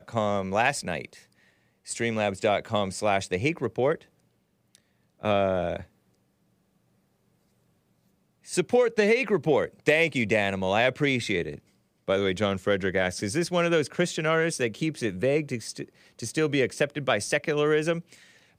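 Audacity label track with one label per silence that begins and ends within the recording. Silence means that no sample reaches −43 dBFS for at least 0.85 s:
5.840000	8.460000	silence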